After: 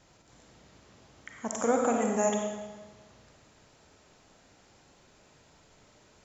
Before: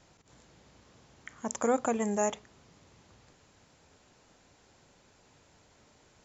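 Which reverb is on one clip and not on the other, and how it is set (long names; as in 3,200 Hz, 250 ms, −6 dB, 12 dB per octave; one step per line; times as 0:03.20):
comb and all-pass reverb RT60 1.3 s, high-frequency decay 0.9×, pre-delay 15 ms, DRR 1 dB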